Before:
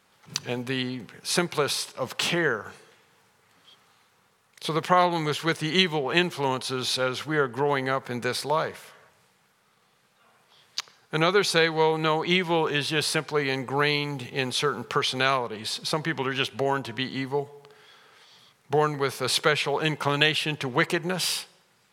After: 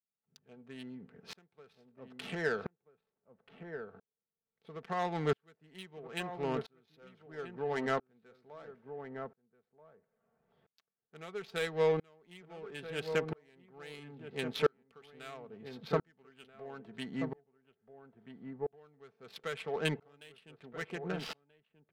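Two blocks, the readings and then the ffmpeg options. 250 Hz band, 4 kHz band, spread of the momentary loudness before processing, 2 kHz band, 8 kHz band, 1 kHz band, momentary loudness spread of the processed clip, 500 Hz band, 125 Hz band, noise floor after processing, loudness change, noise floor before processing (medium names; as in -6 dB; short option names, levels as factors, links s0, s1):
-12.5 dB, -20.5 dB, 9 LU, -16.0 dB, -23.5 dB, -15.5 dB, 19 LU, -10.5 dB, -12.5 dB, under -85 dBFS, -12.5 dB, -65 dBFS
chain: -filter_complex "[0:a]equalizer=f=1000:t=o:w=0.27:g=-11.5,adynamicsmooth=sensitivity=1.5:basefreq=930,aecho=1:1:4.5:0.42,asplit=2[s0][s1];[s1]adelay=1283,volume=0.447,highshelf=f=4000:g=-28.9[s2];[s0][s2]amix=inputs=2:normalize=0,aeval=exprs='val(0)*pow(10,-39*if(lt(mod(-0.75*n/s,1),2*abs(-0.75)/1000),1-mod(-0.75*n/s,1)/(2*abs(-0.75)/1000),(mod(-0.75*n/s,1)-2*abs(-0.75)/1000)/(1-2*abs(-0.75)/1000))/20)':c=same,volume=0.75"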